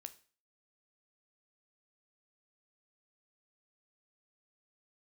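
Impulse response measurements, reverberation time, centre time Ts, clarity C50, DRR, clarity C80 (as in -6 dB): 0.40 s, 4 ms, 17.0 dB, 10.0 dB, 21.0 dB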